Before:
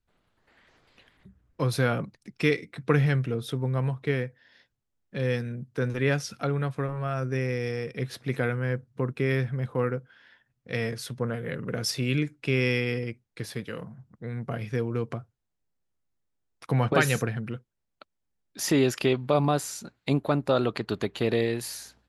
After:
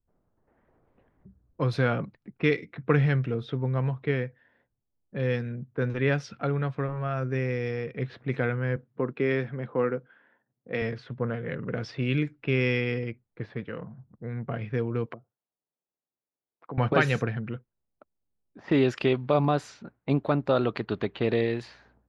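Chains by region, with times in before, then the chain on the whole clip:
8.76–10.82 s: high-pass 240 Hz + bass shelf 420 Hz +5 dB
15.06–16.78 s: low-pass that closes with the level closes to 360 Hz, closed at -31.5 dBFS + frequency weighting A
whole clip: low-pass 3.5 kHz 12 dB/octave; level-controlled noise filter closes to 750 Hz, open at -23 dBFS

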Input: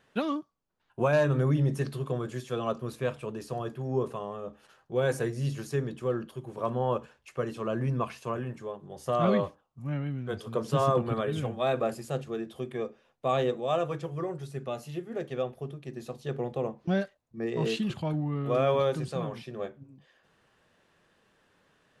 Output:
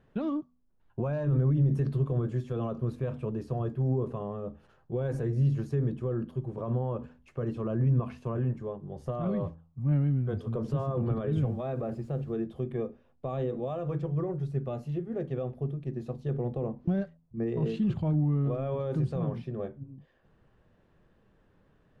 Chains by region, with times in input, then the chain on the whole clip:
11.44–12.33 s: low-pass 3.5 kHz 6 dB/octave + compression 2.5:1, threshold -31 dBFS + word length cut 10-bit, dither none
whole clip: de-hum 82.39 Hz, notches 3; peak limiter -25.5 dBFS; tilt EQ -4 dB/octave; trim -3.5 dB

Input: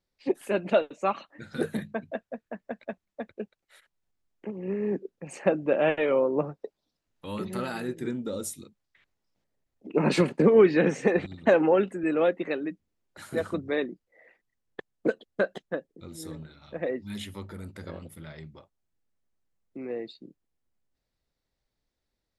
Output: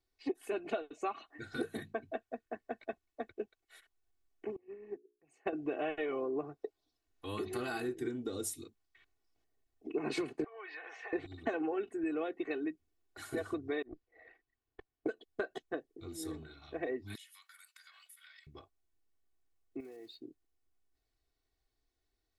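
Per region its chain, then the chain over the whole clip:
4.56–5.53 s: hum notches 60/120/180/240/300/360/420 Hz + upward expansion 2.5:1, over -35 dBFS
10.44–11.13 s: high-pass 760 Hz 24 dB/octave + compression 12:1, threshold -38 dBFS + distance through air 260 m
13.82–15.06 s: compressor with a negative ratio -41 dBFS, ratio -0.5 + valve stage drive 32 dB, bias 0.75 + distance through air 170 m
17.15–18.47 s: inverse Chebyshev high-pass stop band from 310 Hz, stop band 70 dB + treble shelf 3.7 kHz +7 dB + compression 5:1, threshold -52 dBFS
19.80–20.20 s: block-companded coder 5-bit + compression, threshold -46 dBFS
whole clip: comb 2.7 ms, depth 98%; compression 6:1, threshold -28 dBFS; trim -5 dB

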